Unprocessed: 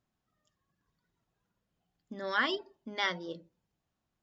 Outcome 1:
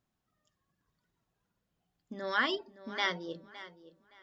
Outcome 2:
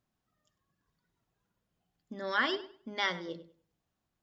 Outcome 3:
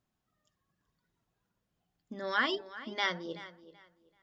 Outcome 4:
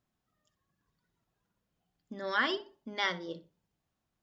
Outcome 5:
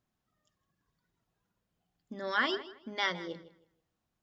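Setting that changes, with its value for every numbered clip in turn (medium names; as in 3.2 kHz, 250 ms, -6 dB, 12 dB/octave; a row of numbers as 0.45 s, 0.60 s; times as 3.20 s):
tape echo, time: 565 ms, 100 ms, 381 ms, 62 ms, 160 ms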